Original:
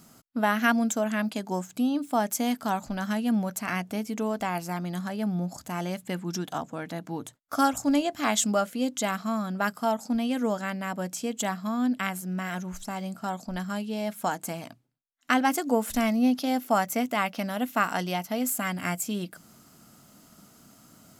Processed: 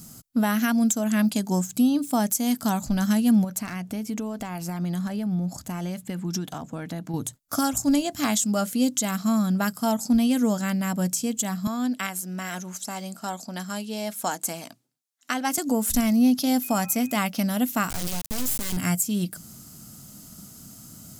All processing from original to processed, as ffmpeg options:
-filter_complex "[0:a]asettb=1/sr,asplit=3[s0][s1][s2];[s0]atrim=end=3.444[s3];[s1]atrim=start=3.44:end=7.14,asetpts=PTS-STARTPTS,afade=t=in:d=0.004:c=qsin,afade=t=out:st=3.696:d=0.004:c=qsin,bass=f=250:g=-4,treble=f=4000:g=-8,acompressor=threshold=0.0282:ratio=8:attack=3.2:release=140:knee=1:detection=peak,aeval=exprs='clip(val(0),-1,0.0422)':c=same[s4];[s2]atrim=start=7.136[s5];[s3][s4]acrossfade=d=0.004:c1=hsin:c2=qsin[s6];[s6][s5]acrossfade=d=0.004:c1=qsin:c2=hsin,asettb=1/sr,asplit=3[s7][s8][s9];[s7]atrim=end=11.674[s10];[s8]atrim=start=11.67:end=15.58,asetpts=PTS-STARTPTS,afade=t=in:d=0.004:c=qsin,afade=t=out:st=3.906:d=0.004:c=qsin,highpass=350,highshelf=f=11000:g=-8[s11];[s9]atrim=start=15.576[s12];[s10][s11]acrossfade=d=0.004:c1=hsin:c2=qsin[s13];[s13][s12]acrossfade=d=0.004:c1=qsin:c2=hsin,asettb=1/sr,asplit=3[s14][s15][s16];[s14]atrim=end=16.634[s17];[s15]atrim=start=16.63:end=17.18,asetpts=PTS-STARTPTS,afade=t=in:d=0.004:c=qsin,afade=t=out:st=0.546:d=0.004:c=qsin,bandreject=f=264.7:t=h:w=4,bandreject=f=529.4:t=h:w=4,bandreject=f=794.1:t=h:w=4,bandreject=f=1058.8:t=h:w=4,bandreject=f=1323.5:t=h:w=4,bandreject=f=1588.2:t=h:w=4,bandreject=f=1852.9:t=h:w=4,aeval=exprs='val(0)+0.00501*sin(2*PI*2500*n/s)':c=same[s18];[s16]atrim=start=17.176[s19];[s17][s18]acrossfade=d=0.004:c1=hsin:c2=qsin[s20];[s20][s19]acrossfade=d=0.004:c1=qsin:c2=hsin,asettb=1/sr,asplit=3[s21][s22][s23];[s21]atrim=end=17.904[s24];[s22]atrim=start=17.9:end=18.77,asetpts=PTS-STARTPTS,afade=t=in:d=0.004:c=qsin,afade=t=out:st=0.866:d=0.004:c=qsin,lowshelf=f=240:g=3.5,acompressor=threshold=0.02:ratio=2:attack=3.2:release=140:knee=1:detection=peak,acrusher=bits=3:dc=4:mix=0:aa=0.000001[s25];[s23]atrim=start=18.766[s26];[s24][s25]acrossfade=d=0.004:c1=hsin:c2=qsin[s27];[s27][s26]acrossfade=d=0.004:c1=qsin:c2=hsin,bass=f=250:g=13,treble=f=4000:g=13,alimiter=limit=0.237:level=0:latency=1:release=278"

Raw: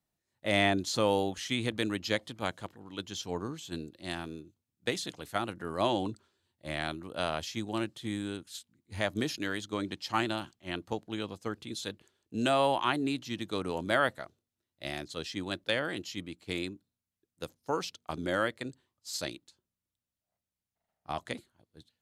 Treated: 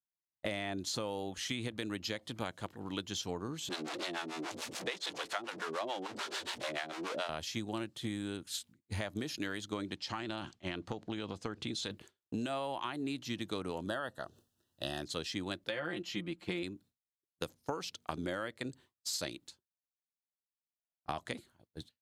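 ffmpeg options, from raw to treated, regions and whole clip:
-filter_complex "[0:a]asettb=1/sr,asplit=3[s0][s1][s2];[s0]atrim=end=3.694[s3];[s1]atrim=start=3.69:end=7.29,asetpts=PTS-STARTPTS,afade=t=in:d=0.004:c=qsin,afade=t=out:st=3.596:d=0.004:c=qsin,aeval=exprs='val(0)+0.5*0.0251*sgn(val(0))':c=same,highpass=420,lowpass=6500,acrossover=split=490[s4][s5];[s4]aeval=exprs='val(0)*(1-1/2+1/2*cos(2*PI*6.9*n/s))':c=same[s6];[s5]aeval=exprs='val(0)*(1-1/2-1/2*cos(2*PI*6.9*n/s))':c=same[s7];[s6][s7]amix=inputs=2:normalize=0[s8];[s2]atrim=start=7.286[s9];[s3][s8]acrossfade=d=0.004:c1=hsin:c2=qsin[s10];[s10][s9]acrossfade=d=0.004:c1=qsin:c2=hsin,asettb=1/sr,asplit=3[s11][s12][s13];[s11]atrim=end=9.974[s14];[s12]atrim=start=9.97:end=11.91,asetpts=PTS-STARTPTS,afade=t=in:d=0.004:c=qsin,afade=t=out:st=1.936:d=0.004:c=qsin,lowpass=6800,acompressor=threshold=0.0141:ratio=4:attack=3.2:release=140:knee=1:detection=peak[s15];[s13]atrim=start=11.906[s16];[s14][s15]acrossfade=d=0.004:c1=hsin:c2=qsin[s17];[s17][s16]acrossfade=d=0.004:c1=qsin:c2=hsin,asettb=1/sr,asplit=3[s18][s19][s20];[s18]atrim=end=13.864[s21];[s19]atrim=start=13.86:end=15.02,asetpts=PTS-STARTPTS,afade=t=in:d=0.004:c=qsin,afade=t=out:st=1.156:d=0.004:c=qsin,acompressor=mode=upward:threshold=0.00316:ratio=2.5:attack=3.2:release=140:knee=2.83:detection=peak,asuperstop=centerf=2200:order=8:qfactor=3.2[s22];[s20]atrim=start=15.016[s23];[s21][s22]acrossfade=d=0.004:c1=hsin:c2=qsin[s24];[s24][s23]acrossfade=d=0.004:c1=qsin:c2=hsin,asettb=1/sr,asplit=3[s25][s26][s27];[s25]atrim=end=15.694[s28];[s26]atrim=start=15.69:end=16.63,asetpts=PTS-STARTPTS,afade=t=in:d=0.004:c=qsin,afade=t=out:st=0.936:d=0.004:c=qsin,bass=f=250:g=-2,treble=f=4000:g=-10,aecho=1:1:5.7:0.8,atrim=end_sample=41454[s29];[s27]atrim=start=16.626[s30];[s28][s29]acrossfade=d=0.004:c1=hsin:c2=qsin[s31];[s31][s30]acrossfade=d=0.004:c1=qsin:c2=hsin,agate=range=0.0224:threshold=0.00178:ratio=3:detection=peak,alimiter=limit=0.106:level=0:latency=1:release=196,acompressor=threshold=0.00631:ratio=6,volume=2.66"

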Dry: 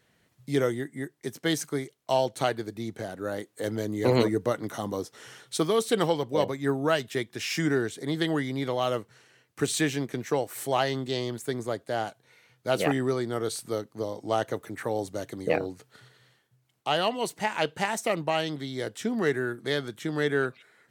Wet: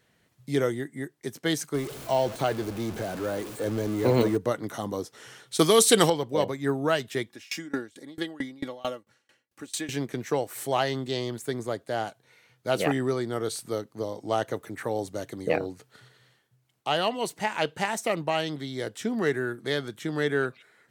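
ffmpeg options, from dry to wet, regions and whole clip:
-filter_complex "[0:a]asettb=1/sr,asplit=3[s0][s1][s2];[s0]atrim=end=1.744[s3];[s1]atrim=start=1.74:end=4.37,asetpts=PTS-STARTPTS,afade=t=in:d=0.004:c=qsin,afade=t=out:st=2.626:d=0.004:c=qsin,aeval=exprs='val(0)+0.5*0.0266*sgn(val(0))':c=same,deesser=0.75,bandreject=f=1900:w=20[s4];[s2]atrim=start=4.366[s5];[s3][s4]acrossfade=d=0.004:c1=hsin:c2=qsin[s6];[s6][s5]acrossfade=d=0.004:c1=qsin:c2=hsin,asettb=1/sr,asplit=3[s7][s8][s9];[s7]atrim=end=5.594[s10];[s8]atrim=start=5.59:end=6.1,asetpts=PTS-STARTPTS,afade=t=in:d=0.004:c=qsin,afade=t=out:st=0.506:d=0.004:c=qsin,aemphasis=mode=production:type=75fm,acontrast=43,lowpass=9700[s11];[s9]atrim=start=6.096[s12];[s10][s11]acrossfade=d=0.004:c1=hsin:c2=qsin[s13];[s13][s12]acrossfade=d=0.004:c1=qsin:c2=hsin,asettb=1/sr,asplit=3[s14][s15][s16];[s14]atrim=end=7.294[s17];[s15]atrim=start=7.29:end=9.89,asetpts=PTS-STARTPTS,afade=t=in:d=0.004:c=qsin,afade=t=out:st=2.596:d=0.004:c=qsin,highpass=63,aecho=1:1:3.6:0.57,atrim=end_sample=114660,aeval=exprs='val(0)*pow(10,-26*if(lt(mod(4.5*n/s,1),2*abs(4.5)/1000),1-mod(4.5*n/s,1)/(2*abs(4.5)/1000),(mod(4.5*n/s,1)-2*abs(4.5)/1000)/(1-2*abs(4.5)/1000))/20)':c=same[s18];[s16]atrim=start=9.886[s19];[s17][s18]acrossfade=d=0.004:c1=hsin:c2=qsin[s20];[s20][s19]acrossfade=d=0.004:c1=qsin:c2=hsin"

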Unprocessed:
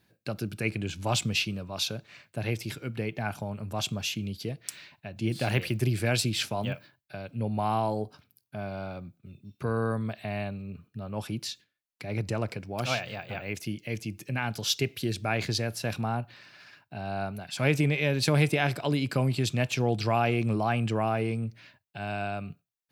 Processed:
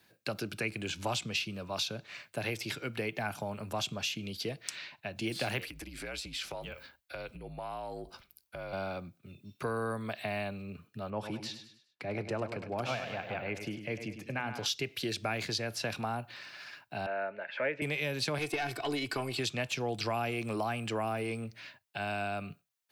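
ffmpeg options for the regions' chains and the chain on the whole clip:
-filter_complex "[0:a]asettb=1/sr,asplit=3[s0][s1][s2];[s0]atrim=end=5.644[s3];[s1]atrim=start=5.64:end=8.73,asetpts=PTS-STARTPTS,afade=t=in:d=0.004:c=qsin,afade=t=out:st=3.086:d=0.004:c=qsin,afreqshift=-57,acompressor=threshold=0.0141:ratio=16:attack=3.2:release=140:knee=1:detection=peak[s4];[s2]atrim=start=8.726[s5];[s3][s4]acrossfade=d=0.004:c1=hsin:c2=qsin[s6];[s6][s5]acrossfade=d=0.004:c1=qsin:c2=hsin,asettb=1/sr,asplit=3[s7][s8][s9];[s7]atrim=end=11.104[s10];[s8]atrim=start=11.1:end=14.66,asetpts=PTS-STARTPTS,afade=t=in:d=0.004:c=qsin,afade=t=out:st=3.556:d=0.004:c=qsin,lowpass=f=1400:p=1,aecho=1:1:101|202|303|404:0.316|0.126|0.0506|0.0202,atrim=end_sample=156996[s11];[s9]atrim=start=14.656[s12];[s10][s11]acrossfade=d=0.004:c1=hsin:c2=qsin[s13];[s13][s12]acrossfade=d=0.004:c1=qsin:c2=hsin,asettb=1/sr,asplit=3[s14][s15][s16];[s14]atrim=end=17.064[s17];[s15]atrim=start=17.06:end=17.82,asetpts=PTS-STARTPTS,afade=t=in:d=0.004:c=qsin,afade=t=out:st=0.756:d=0.004:c=qsin,asuperstop=centerf=750:order=8:qfactor=6.2,highpass=430,equalizer=f=540:t=q:w=4:g=8,equalizer=f=1100:t=q:w=4:g=-8,equalizer=f=1800:t=q:w=4:g=8,lowpass=f=2300:w=0.5412,lowpass=f=2300:w=1.3066[s18];[s16]atrim=start=17.816[s19];[s17][s18]acrossfade=d=0.004:c1=hsin:c2=qsin[s20];[s20][s19]acrossfade=d=0.004:c1=qsin:c2=hsin,asettb=1/sr,asplit=3[s21][s22][s23];[s21]atrim=end=18.384[s24];[s22]atrim=start=18.38:end=19.39,asetpts=PTS-STARTPTS,afade=t=in:d=0.004:c=qsin,afade=t=out:st=1.006:d=0.004:c=qsin,aecho=1:1:2.7:0.74,atrim=end_sample=44541,aeval=exprs='(tanh(6.31*val(0)+0.55)-tanh(0.55))/6.31':c=same[s25];[s23]atrim=start=19.386[s26];[s24][s25]acrossfade=d=0.004:c1=hsin:c2=qsin[s27];[s27][s26]acrossfade=d=0.004:c1=qsin:c2=hsin,lowshelf=f=300:g=-11,acrossover=split=100|310|6600[s28][s29][s30][s31];[s28]acompressor=threshold=0.00141:ratio=4[s32];[s29]acompressor=threshold=0.00501:ratio=4[s33];[s30]acompressor=threshold=0.0126:ratio=4[s34];[s31]acompressor=threshold=0.00141:ratio=4[s35];[s32][s33][s34][s35]amix=inputs=4:normalize=0,volume=1.78"

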